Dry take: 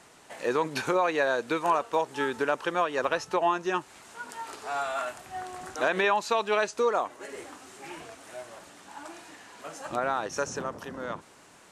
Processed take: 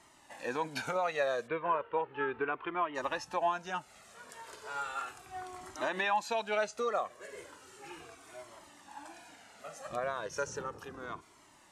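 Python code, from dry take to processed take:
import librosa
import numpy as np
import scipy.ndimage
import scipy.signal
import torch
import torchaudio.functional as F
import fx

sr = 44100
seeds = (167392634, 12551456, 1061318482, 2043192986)

y = fx.steep_lowpass(x, sr, hz=2900.0, slope=36, at=(1.46, 2.94), fade=0.02)
y = fx.comb_cascade(y, sr, direction='falling', hz=0.35)
y = y * 10.0 ** (-2.0 / 20.0)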